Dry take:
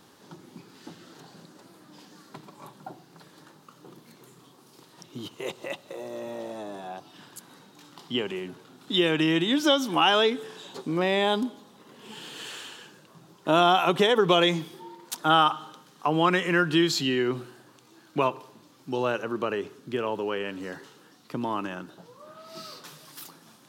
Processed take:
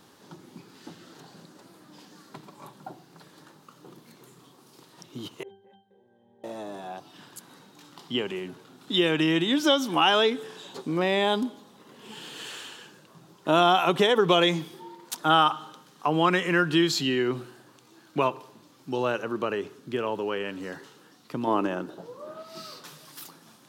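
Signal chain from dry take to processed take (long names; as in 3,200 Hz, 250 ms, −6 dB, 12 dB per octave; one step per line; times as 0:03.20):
0:05.43–0:06.44: resonances in every octave G, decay 0.38 s
0:21.47–0:22.43: parametric band 450 Hz +10 dB 1.9 octaves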